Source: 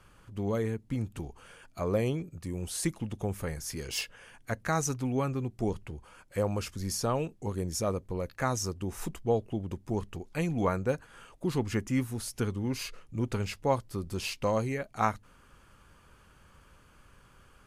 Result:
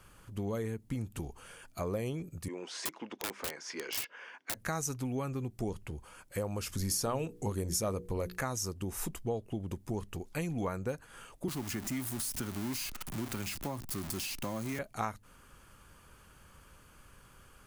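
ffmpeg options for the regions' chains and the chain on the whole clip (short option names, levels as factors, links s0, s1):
-filter_complex "[0:a]asettb=1/sr,asplit=3[s0][s1][s2];[s0]atrim=end=2.484[s3];[s1]atrim=start=2.48:end=4.55,asetpts=PTS-STARTPTS,afade=t=in:d=0.004:c=qsin,afade=t=out:st=2.066:d=0.004:c=qsin,highpass=f=280:w=0.5412,highpass=f=280:w=1.3066,equalizer=f=1000:t=q:w=4:g=7,equalizer=f=1500:t=q:w=4:g=5,equalizer=f=2100:t=q:w=4:g=5,equalizer=f=4100:t=q:w=4:g=-4,lowpass=f=5100:w=0.5412,lowpass=f=5100:w=1.3066,aeval=exprs='(mod(29.9*val(0)+1,2)-1)/29.9':c=same[s4];[s2]atrim=start=4.546[s5];[s3][s4]acrossfade=d=0.004:c1=hsin:c2=qsin[s6];[s6][s5]acrossfade=d=0.004:c1=qsin:c2=hsin,asettb=1/sr,asplit=3[s7][s8][s9];[s7]atrim=end=6.704[s10];[s8]atrim=start=6.7:end=8.41,asetpts=PTS-STARTPTS,afade=t=in:d=0.004:c=qsin,afade=t=out:st=1.706:d=0.004:c=qsin,bandreject=f=60:t=h:w=6,bandreject=f=120:t=h:w=6,bandreject=f=180:t=h:w=6,bandreject=f=240:t=h:w=6,bandreject=f=300:t=h:w=6,bandreject=f=360:t=h:w=6,bandreject=f=420:t=h:w=6,bandreject=f=480:t=h:w=6,acontrast=68[s11];[s9]atrim=start=8.406[s12];[s10][s11]acrossfade=d=0.004:c1=hsin:c2=qsin[s13];[s13][s12]acrossfade=d=0.004:c1=qsin:c2=hsin,asettb=1/sr,asplit=3[s14][s15][s16];[s14]atrim=end=11.484[s17];[s15]atrim=start=11.48:end=14.79,asetpts=PTS-STARTPTS,afade=t=in:d=0.004:c=qsin,afade=t=out:st=3.306:d=0.004:c=qsin,aeval=exprs='val(0)+0.5*0.0266*sgn(val(0))':c=same,equalizer=f=470:t=o:w=0.36:g=-15,acrossover=split=190|410[s18][s19][s20];[s18]acompressor=threshold=0.00562:ratio=4[s21];[s19]acompressor=threshold=0.02:ratio=4[s22];[s20]acompressor=threshold=0.0112:ratio=4[s23];[s21][s22][s23]amix=inputs=3:normalize=0[s24];[s16]atrim=start=14.786[s25];[s17][s24]acrossfade=d=0.004:c1=hsin:c2=qsin[s26];[s26][s25]acrossfade=d=0.004:c1=qsin:c2=hsin,highshelf=f=8500:g=11,acompressor=threshold=0.0224:ratio=3"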